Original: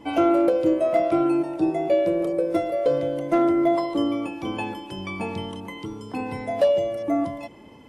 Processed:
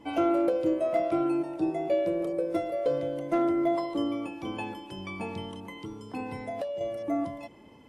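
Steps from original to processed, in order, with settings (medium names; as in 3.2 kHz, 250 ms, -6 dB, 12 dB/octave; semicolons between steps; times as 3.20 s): 6.35–6.81 s: compression 12:1, threshold -25 dBFS, peak gain reduction 11 dB; trim -6 dB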